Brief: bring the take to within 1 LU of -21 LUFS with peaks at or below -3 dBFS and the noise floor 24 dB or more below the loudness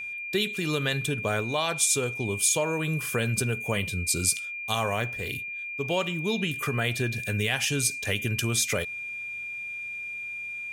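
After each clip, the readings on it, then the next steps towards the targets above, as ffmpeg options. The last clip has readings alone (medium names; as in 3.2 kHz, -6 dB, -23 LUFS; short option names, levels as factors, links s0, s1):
steady tone 2.4 kHz; tone level -33 dBFS; loudness -27.0 LUFS; peak level -9.5 dBFS; loudness target -21.0 LUFS
-> -af "bandreject=f=2400:w=30"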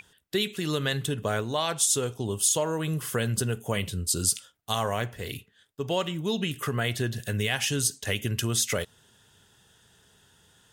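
steady tone not found; loudness -27.5 LUFS; peak level -10.0 dBFS; loudness target -21.0 LUFS
-> -af "volume=2.11"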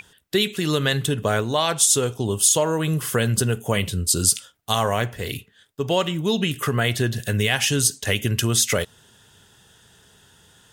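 loudness -21.0 LUFS; peak level -3.5 dBFS; noise floor -58 dBFS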